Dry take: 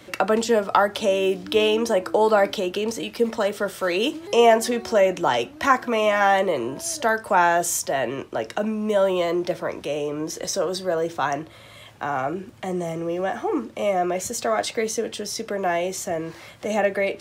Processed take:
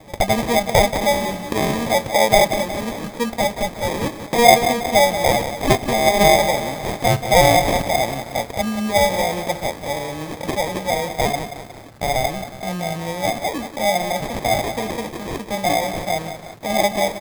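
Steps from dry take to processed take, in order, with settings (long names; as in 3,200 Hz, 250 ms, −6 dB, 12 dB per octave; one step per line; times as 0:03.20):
comb filter 1.3 ms, depth 84%
decimation without filtering 31×
feedback echo at a low word length 181 ms, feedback 55%, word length 6 bits, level −9.5 dB
level +1 dB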